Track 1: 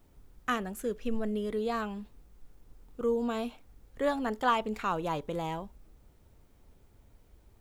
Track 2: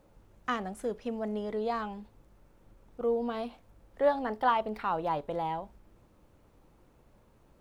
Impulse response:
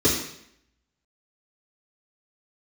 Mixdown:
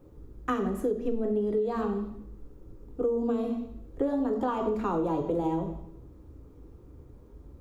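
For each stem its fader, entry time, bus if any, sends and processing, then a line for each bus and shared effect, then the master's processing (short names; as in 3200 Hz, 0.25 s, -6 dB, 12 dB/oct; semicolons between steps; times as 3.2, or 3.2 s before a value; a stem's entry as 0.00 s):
-7.5 dB, 0.00 s, send -16.5 dB, low shelf 150 Hz +12 dB
-1.5 dB, 0.00 s, send -14.5 dB, LPF 1200 Hz 12 dB/oct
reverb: on, RT60 0.70 s, pre-delay 3 ms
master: compressor 12:1, threshold -24 dBFS, peak gain reduction 10 dB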